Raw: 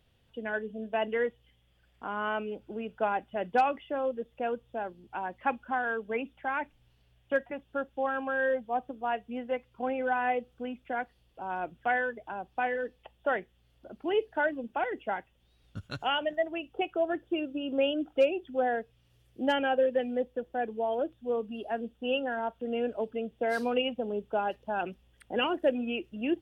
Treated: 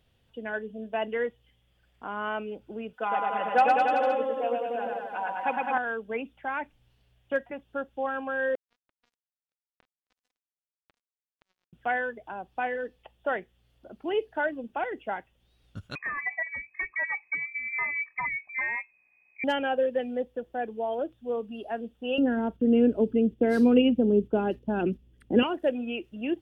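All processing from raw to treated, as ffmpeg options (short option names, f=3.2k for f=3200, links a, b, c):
-filter_complex "[0:a]asettb=1/sr,asplit=3[a][b][c];[a]atrim=end=2.934[d];[b]atrim=start=2.93:end=5.78,asetpts=PTS-STARTPTS,afade=t=in:d=0.004:c=qsin,afade=t=out:st=2.846:d=0.004:c=qsin,highpass=f=550:p=1,aecho=1:1:4:0.87,atrim=end_sample=125685,aecho=1:1:110|209|298.1|378.3|450.5|515.4:0.794|0.631|0.501|0.398|0.316|0.251,atrim=end_sample=125685[e];[c]atrim=start=5.776[f];[d][e]acrossfade=d=0.004:c1=hsin:c2=qsin[g];[g][f]acrossfade=d=0.004:c1=qsin:c2=hsin,asettb=1/sr,asplit=3[h][i][j];[h]atrim=end=8.554[k];[i]atrim=start=8.55:end=11.73,asetpts=PTS-STARTPTS,afade=t=in:d=0.004:c=qsin,afade=t=out:st=3.176:d=0.004:c=qsin,lowshelf=f=230:t=q:w=3:g=-12.5,acompressor=threshold=-40dB:ratio=6:attack=3.2:release=140:knee=1:detection=peak,acrusher=bits=4:mix=0:aa=0.5[l];[j]atrim=start=11.726[m];[k][l]acrossfade=d=0.004:c1=hsin:c2=qsin[n];[n][m]acrossfade=d=0.004:c1=qsin:c2=hsin,asettb=1/sr,asplit=3[o][p][q];[o]atrim=end=15.954[r];[p]atrim=start=15.95:end=19.44,asetpts=PTS-STARTPTS,afade=t=in:d=0.004:c=qsin,afade=t=out:st=3.486:d=0.004:c=qsin,aeval=exprs='0.0631*(abs(mod(val(0)/0.0631+3,4)-2)-1)':c=same,asuperstop=centerf=1200:order=8:qfactor=4.5,lowpass=f=2.2k:t=q:w=0.5098,lowpass=f=2.2k:t=q:w=0.6013,lowpass=f=2.2k:t=q:w=0.9,lowpass=f=2.2k:t=q:w=2.563,afreqshift=-2600[s];[q]atrim=start=19.436[t];[r][s]acrossfade=d=0.004:c1=hsin:c2=qsin[u];[u][t]acrossfade=d=0.004:c1=qsin:c2=hsin,asettb=1/sr,asplit=3[v][w][x];[v]atrim=end=22.184[y];[w]atrim=start=22.18:end=25.43,asetpts=PTS-STARTPTS,afade=t=in:d=0.004:c=qsin,afade=t=out:st=3.246:d=0.004:c=qsin,agate=range=-7dB:threshold=-55dB:ratio=16:release=100:detection=peak,lowshelf=f=480:t=q:w=1.5:g=12.5[z];[x]atrim=start=25.426[aa];[y][z]acrossfade=d=0.004:c1=hsin:c2=qsin[ab];[ab][aa]acrossfade=d=0.004:c1=qsin:c2=hsin"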